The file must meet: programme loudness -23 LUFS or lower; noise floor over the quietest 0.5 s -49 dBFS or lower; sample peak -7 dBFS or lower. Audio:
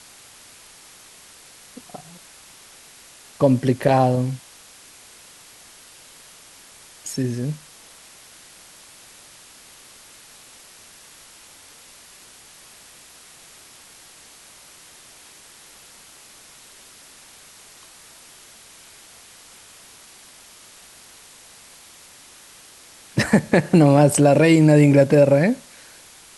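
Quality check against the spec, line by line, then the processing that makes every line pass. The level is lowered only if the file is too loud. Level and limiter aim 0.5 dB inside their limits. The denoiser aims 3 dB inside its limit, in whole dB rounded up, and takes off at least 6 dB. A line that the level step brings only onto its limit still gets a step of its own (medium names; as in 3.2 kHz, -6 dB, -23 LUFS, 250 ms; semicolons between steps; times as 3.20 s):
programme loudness -17.0 LUFS: fail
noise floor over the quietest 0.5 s -47 dBFS: fail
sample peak -2.5 dBFS: fail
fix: trim -6.5 dB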